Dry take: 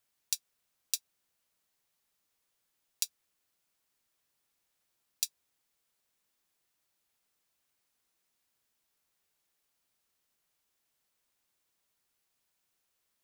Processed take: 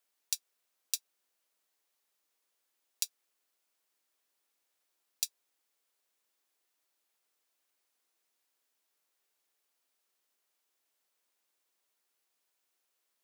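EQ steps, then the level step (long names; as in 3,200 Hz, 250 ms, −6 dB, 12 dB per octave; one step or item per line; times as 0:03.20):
Chebyshev high-pass filter 360 Hz, order 2
0.0 dB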